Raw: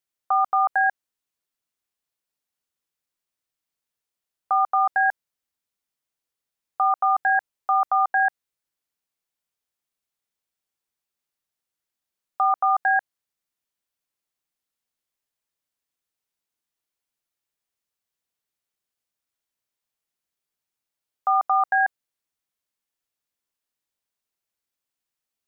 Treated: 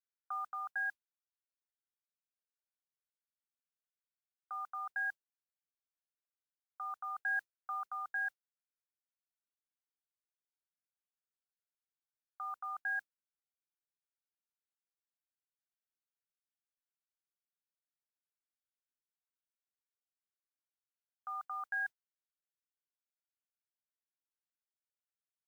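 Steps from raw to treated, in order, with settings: gain riding 0.5 s; band-pass filter 1.5 kHz, Q 5.8; modulation noise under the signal 34 dB; trim -8.5 dB

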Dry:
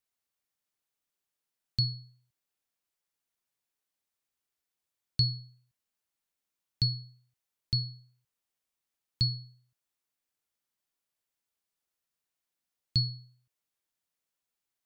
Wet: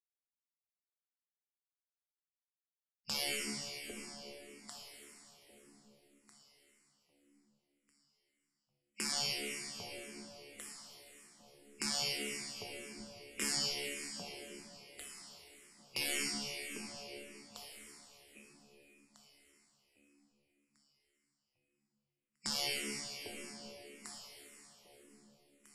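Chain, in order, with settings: in parallel at -9 dB: wavefolder -32 dBFS; on the sum: treble shelf 5.3 kHz -11.5 dB; waveshaping leveller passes 5; compression 1.5:1, threshold -26 dBFS, peak gain reduction 3 dB; echo whose repeats swap between lows and highs 461 ms, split 1.6 kHz, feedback 55%, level -5 dB; Chebyshev shaper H 8 -7 dB, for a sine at -16.5 dBFS; spectral gate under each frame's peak -20 dB weak; plate-style reverb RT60 2.3 s, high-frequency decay 0.95×, DRR 0 dB; speed mistake 78 rpm record played at 45 rpm; barber-pole phaser -1.8 Hz; trim -3 dB

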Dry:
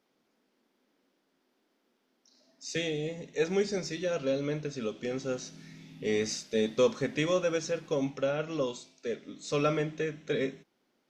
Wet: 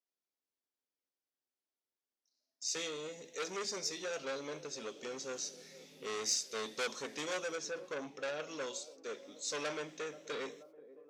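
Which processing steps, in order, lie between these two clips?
7.55–8.23 s: treble shelf 3.7 kHz -10 dB; gate -58 dBFS, range -21 dB; tone controls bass -15 dB, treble +11 dB; feedback echo behind a band-pass 481 ms, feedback 64%, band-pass 480 Hz, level -18.5 dB; transformer saturation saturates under 3.6 kHz; trim -5 dB

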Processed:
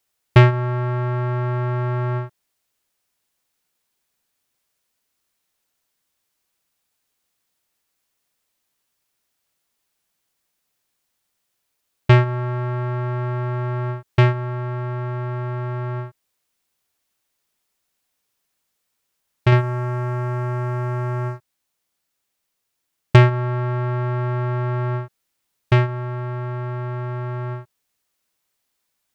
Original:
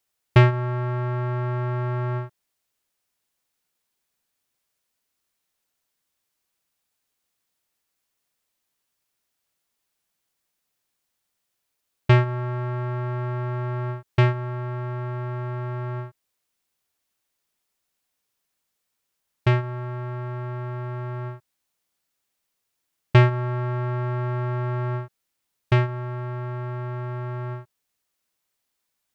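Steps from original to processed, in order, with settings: 19.52–23.16 s: waveshaping leveller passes 1; loudspeaker Doppler distortion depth 0.14 ms; trim +3.5 dB

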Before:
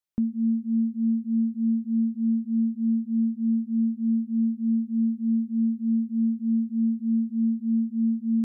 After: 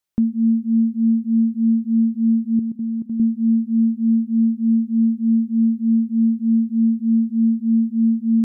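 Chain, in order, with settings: 2.59–3.20 s: level held to a coarse grid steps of 15 dB; trim +7 dB

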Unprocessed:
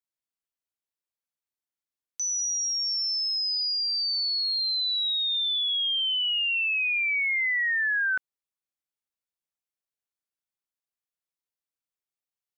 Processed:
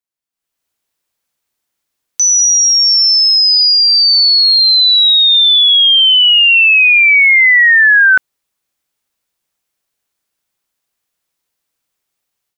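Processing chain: level rider gain up to 16 dB; trim +2.5 dB

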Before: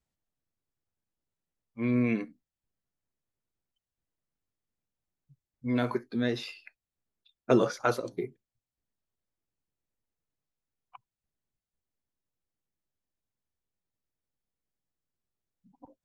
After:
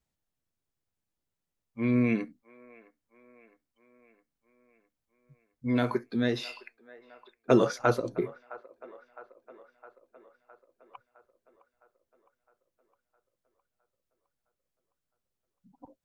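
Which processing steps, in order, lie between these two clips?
7.79–8.22 s: tilt EQ -1.5 dB/octave; on a send: feedback echo behind a band-pass 661 ms, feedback 60%, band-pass 990 Hz, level -17 dB; on the sum: trim +1.5 dB

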